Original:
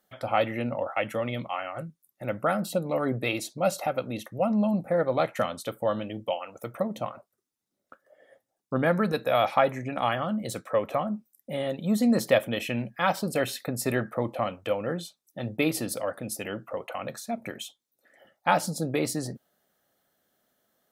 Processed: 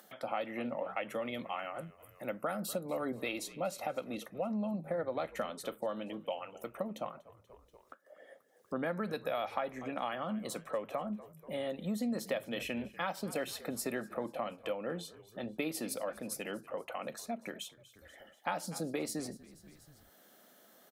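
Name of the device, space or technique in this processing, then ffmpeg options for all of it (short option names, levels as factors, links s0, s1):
upward and downward compression: -filter_complex "[0:a]highpass=f=170:w=0.5412,highpass=f=170:w=1.3066,asettb=1/sr,asplit=3[s0][s1][s2];[s0]atrim=end=1.154[s3];[s1]atrim=start=1.15:end=3.23,asetpts=PTS-STARTPTS,afade=t=in:d=0.004:c=qsin,afade=t=out:st=2.076:d=0.004:c=qsin,highshelf=f=7100:g=8[s4];[s2]atrim=start=3.226[s5];[s3][s4]acrossfade=d=0.004:c1=hsin:c2=qsin[s6];[s6][s5]acrossfade=d=0.004:c1=qsin:c2=hsin,asplit=4[s7][s8][s9][s10];[s8]adelay=241,afreqshift=-52,volume=0.0841[s11];[s9]adelay=482,afreqshift=-104,volume=0.0412[s12];[s10]adelay=723,afreqshift=-156,volume=0.0202[s13];[s7][s11][s12][s13]amix=inputs=4:normalize=0,acompressor=mode=upward:threshold=0.00891:ratio=2.5,acompressor=threshold=0.0447:ratio=4,volume=0.531"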